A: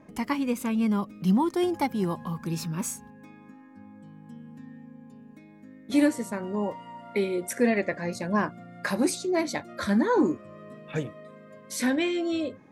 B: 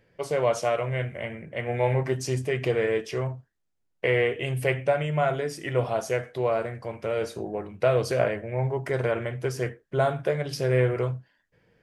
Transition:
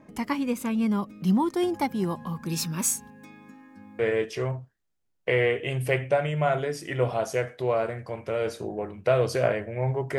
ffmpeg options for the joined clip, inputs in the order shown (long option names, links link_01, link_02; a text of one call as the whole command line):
ffmpeg -i cue0.wav -i cue1.wav -filter_complex "[0:a]asettb=1/sr,asplit=3[link_01][link_02][link_03];[link_01]atrim=end=2.494[link_04];[link_02]atrim=start=2.49:end=3.99,asetpts=PTS-STARTPTS,afade=type=in:duration=0.004:curve=qsin,afade=type=out:start_time=1.496:duration=0.004:curve=qsin,highshelf=frequency=2200:gain=9[link_05];[link_03]atrim=start=3.986[link_06];[link_04][link_05]acrossfade=duration=0.004:curve1=hsin:curve2=qsin[link_07];[link_07][link_06]acrossfade=duration=0.004:curve1=qsin:curve2=hsin,apad=whole_dur=10.18,atrim=end=10.18,atrim=end=3.992[link_08];[1:a]atrim=start=2.748:end=8.94[link_09];[link_08][link_09]acrossfade=duration=0.004:curve1=hsin:curve2=hsin" out.wav